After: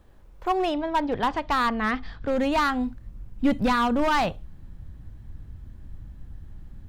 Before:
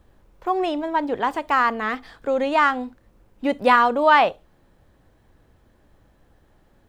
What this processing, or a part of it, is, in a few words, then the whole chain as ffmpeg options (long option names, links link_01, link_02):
limiter into clipper: -filter_complex "[0:a]asettb=1/sr,asplit=3[link_01][link_02][link_03];[link_01]atrim=end=0.744[link_04];[link_02]atrim=start=0.74:end=2.33,asetpts=PTS-STARTPTS,afade=type=in:duration=0.004:curve=qsin,afade=type=out:start_time=1.586:duration=0.004:curve=qsin,lowpass=frequency=5400:width=0.5412,lowpass=frequency=5400:width=1.3066[link_05];[link_03]atrim=start=2.326[link_06];[link_04][link_05]acrossfade=duration=0.004:curve1=hsin:curve2=qsin[link_07];[link_07][link_06]acrossfade=duration=0.004:curve1=qsin:curve2=hsin,alimiter=limit=-10.5dB:level=0:latency=1:release=203,asoftclip=type=hard:threshold=-16.5dB,asubboost=boost=10.5:cutoff=160"